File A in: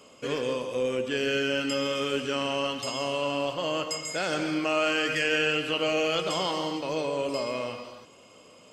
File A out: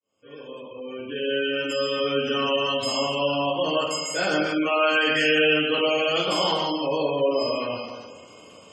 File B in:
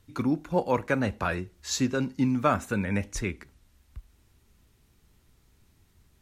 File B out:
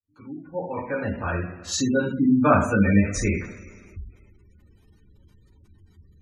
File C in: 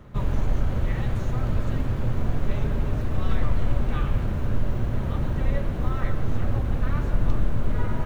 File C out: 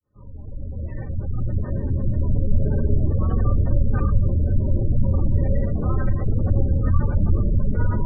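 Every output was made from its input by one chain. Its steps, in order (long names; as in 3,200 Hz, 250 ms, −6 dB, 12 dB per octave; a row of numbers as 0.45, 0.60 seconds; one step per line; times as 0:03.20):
fade in at the beginning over 2.57 s
coupled-rooms reverb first 0.54 s, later 2.3 s, from −18 dB, DRR −6.5 dB
gate on every frequency bin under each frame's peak −25 dB strong
loudness normalisation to −23 LKFS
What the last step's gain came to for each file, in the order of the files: −2.0, 0.0, −2.0 decibels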